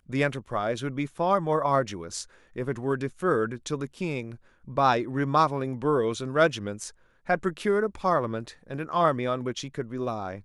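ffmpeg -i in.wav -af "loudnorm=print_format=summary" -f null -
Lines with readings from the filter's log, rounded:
Input Integrated:    -27.6 LUFS
Input True Peak:      -8.6 dBTP
Input LRA:             1.9 LU
Input Threshold:     -37.8 LUFS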